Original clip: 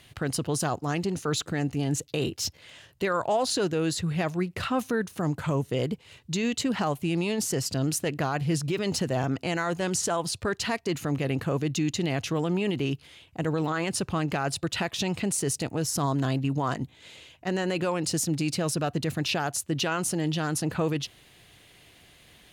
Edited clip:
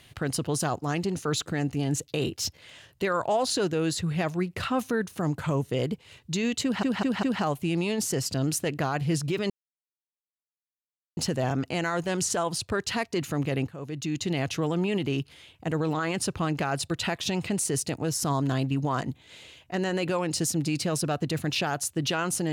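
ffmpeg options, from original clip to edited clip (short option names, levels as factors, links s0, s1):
-filter_complex "[0:a]asplit=6[s0][s1][s2][s3][s4][s5];[s0]atrim=end=6.832[s6];[s1]atrim=start=6.628:end=6.832[s7];[s2]atrim=start=6.628:end=6.832[s8];[s3]atrim=start=6.628:end=8.9,asetpts=PTS-STARTPTS,afade=t=out:st=2.268:d=0.004:c=hsin,apad=pad_dur=1.67[s9];[s4]atrim=start=8.9:end=11.41,asetpts=PTS-STARTPTS,afade=t=in:d=0.004:c=hsin,afade=t=out:st=2.506:d=0.004:c=hsin:silence=0.125893[s10];[s5]atrim=start=11.41,asetpts=PTS-STARTPTS,afade=t=in:d=0.67:silence=0.125893[s11];[s6][s7]acrossfade=d=0.004:c1=hsin:c2=hsin[s12];[s12][s8]acrossfade=d=0.004:c1=hsin:c2=hsin[s13];[s9][s10][s11]concat=n=3:v=0:a=1[s14];[s13][s14]acrossfade=d=0.004:c1=hsin:c2=hsin"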